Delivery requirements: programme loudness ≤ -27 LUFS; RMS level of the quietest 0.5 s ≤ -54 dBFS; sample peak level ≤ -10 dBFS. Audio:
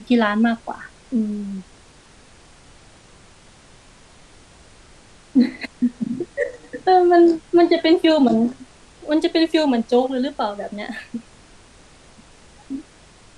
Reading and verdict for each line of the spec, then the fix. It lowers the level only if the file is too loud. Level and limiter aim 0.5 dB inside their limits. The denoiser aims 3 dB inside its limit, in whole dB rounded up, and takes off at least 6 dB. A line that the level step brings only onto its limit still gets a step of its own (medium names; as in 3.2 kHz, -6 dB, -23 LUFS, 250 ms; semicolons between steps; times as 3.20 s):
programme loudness -19.0 LUFS: fail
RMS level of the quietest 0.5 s -48 dBFS: fail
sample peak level -5.5 dBFS: fail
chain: trim -8.5 dB